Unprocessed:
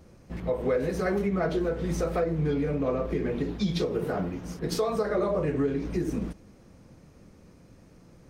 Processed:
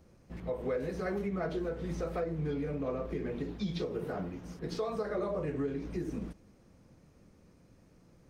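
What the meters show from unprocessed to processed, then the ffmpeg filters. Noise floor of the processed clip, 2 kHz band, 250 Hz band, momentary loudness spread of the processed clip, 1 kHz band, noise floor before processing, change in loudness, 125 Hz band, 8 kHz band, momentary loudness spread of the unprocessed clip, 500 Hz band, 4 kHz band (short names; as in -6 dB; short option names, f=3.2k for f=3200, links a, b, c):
-62 dBFS, -7.5 dB, -7.5 dB, 7 LU, -7.5 dB, -54 dBFS, -7.5 dB, -7.5 dB, -12.5 dB, 7 LU, -7.5 dB, -9.0 dB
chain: -filter_complex "[0:a]acrossover=split=5500[a][b];[b]acompressor=threshold=-55dB:ratio=4:attack=1:release=60[c];[a][c]amix=inputs=2:normalize=0,volume=-7.5dB"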